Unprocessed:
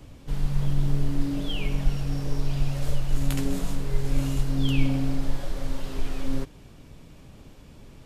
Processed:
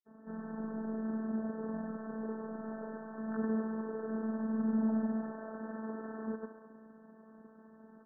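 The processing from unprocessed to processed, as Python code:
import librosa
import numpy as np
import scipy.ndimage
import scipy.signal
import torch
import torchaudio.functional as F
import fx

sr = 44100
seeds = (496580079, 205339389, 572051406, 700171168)

p1 = fx.granulator(x, sr, seeds[0], grain_ms=100.0, per_s=20.0, spray_ms=100.0, spread_st=0)
p2 = fx.brickwall_bandpass(p1, sr, low_hz=150.0, high_hz=1800.0)
p3 = p2 + fx.echo_thinned(p2, sr, ms=69, feedback_pct=79, hz=200.0, wet_db=-10.5, dry=0)
y = fx.robotise(p3, sr, hz=220.0)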